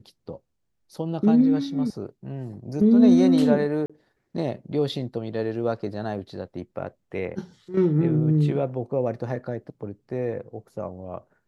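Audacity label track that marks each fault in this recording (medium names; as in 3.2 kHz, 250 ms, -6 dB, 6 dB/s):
3.860000	3.900000	dropout 36 ms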